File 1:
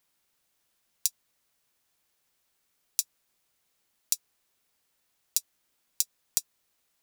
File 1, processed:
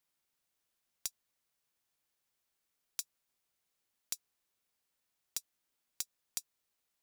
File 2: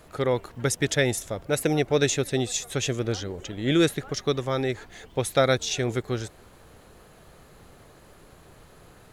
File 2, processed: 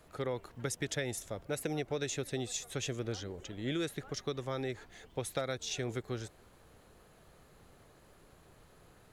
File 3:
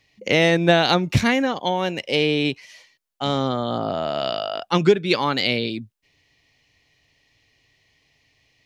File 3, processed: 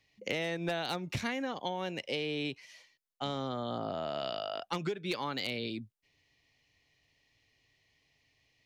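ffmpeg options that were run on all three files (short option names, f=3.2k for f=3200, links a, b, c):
-filter_complex "[0:a]acrossover=split=440[a][b];[a]acompressor=threshold=-22dB:ratio=2.5[c];[c][b]amix=inputs=2:normalize=0,aeval=exprs='0.376*(abs(mod(val(0)/0.376+3,4)-2)-1)':c=same,acompressor=threshold=-22dB:ratio=6,volume=-9dB"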